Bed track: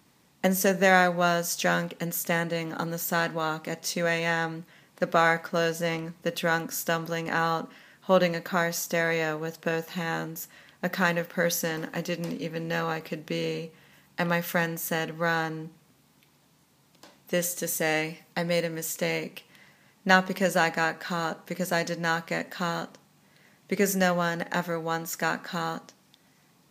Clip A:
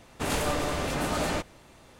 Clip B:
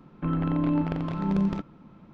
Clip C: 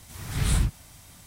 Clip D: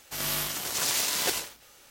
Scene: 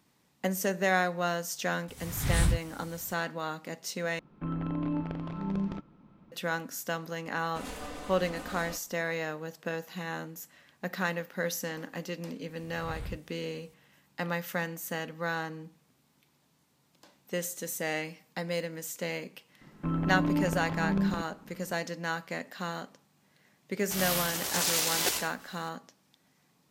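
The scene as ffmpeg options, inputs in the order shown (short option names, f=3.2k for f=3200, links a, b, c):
-filter_complex "[3:a]asplit=2[a][b];[2:a]asplit=2[c][d];[0:a]volume=-6.5dB[e];[1:a]aecho=1:1:4:0.64[f];[b]acrossover=split=3500[g][h];[h]acompressor=threshold=-46dB:ratio=4:attack=1:release=60[i];[g][i]amix=inputs=2:normalize=0[j];[e]asplit=2[k][l];[k]atrim=end=4.194[m];[c]atrim=end=2.13,asetpts=PTS-STARTPTS,volume=-7dB[n];[l]atrim=start=6.316[o];[a]atrim=end=1.26,asetpts=PTS-STARTPTS,volume=-2.5dB,afade=t=in:d=0.004:c=hsin,afade=t=out:st=1.256:d=0.004:c=hsin,adelay=1880[p];[f]atrim=end=1.99,asetpts=PTS-STARTPTS,volume=-14.5dB,afade=t=in:d=0.004:c=hsin,afade=t=out:st=1.986:d=0.004:c=hsin,adelay=7350[q];[j]atrim=end=1.26,asetpts=PTS-STARTPTS,volume=-16.5dB,afade=t=in:d=0.004:c=hsin,afade=t=out:st=1.256:d=0.004:c=hsin,adelay=12480[r];[d]atrim=end=2.13,asetpts=PTS-STARTPTS,volume=-3.5dB,afade=t=in:d=0.004:c=hsin,afade=t=out:st=2.126:d=0.004:c=hsin,adelay=19610[s];[4:a]atrim=end=1.9,asetpts=PTS-STARTPTS,volume=-1dB,afade=t=in:d=0.004:c=hsin,afade=t=out:st=1.896:d=0.004:c=hsin,adelay=23790[t];[m][n]acrossfade=d=0.004:c1=hsin:c2=hsin[u];[u][o]acrossfade=d=0.004:c1=hsin:c2=hsin[v];[v][p][q][r][s][t]amix=inputs=6:normalize=0"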